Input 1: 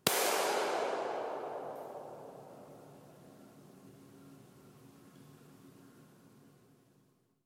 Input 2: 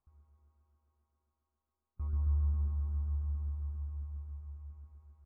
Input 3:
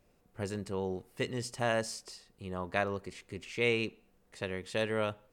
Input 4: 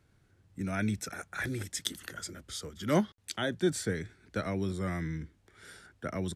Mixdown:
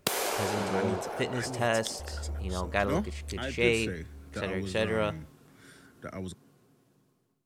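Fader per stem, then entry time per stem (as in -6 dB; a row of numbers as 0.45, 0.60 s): +0.5, -6.0, +3.0, -4.0 dB; 0.00, 0.00, 0.00, 0.00 s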